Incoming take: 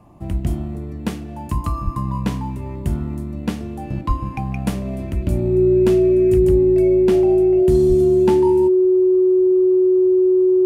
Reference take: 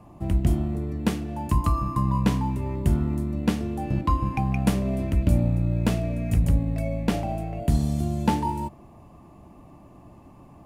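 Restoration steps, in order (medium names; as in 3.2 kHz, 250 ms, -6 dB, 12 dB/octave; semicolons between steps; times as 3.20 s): band-stop 370 Hz, Q 30; 1.84–1.96 s: high-pass 140 Hz 24 dB/octave; 4.07–4.19 s: high-pass 140 Hz 24 dB/octave; 7.88–8.00 s: high-pass 140 Hz 24 dB/octave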